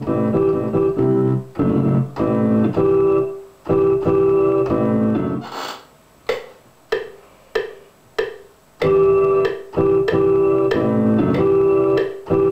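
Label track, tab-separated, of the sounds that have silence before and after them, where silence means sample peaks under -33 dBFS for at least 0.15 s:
3.660000	5.810000	sound
6.290000	6.520000	sound
6.920000	7.160000	sound
7.550000	7.780000	sound
8.180000	8.400000	sound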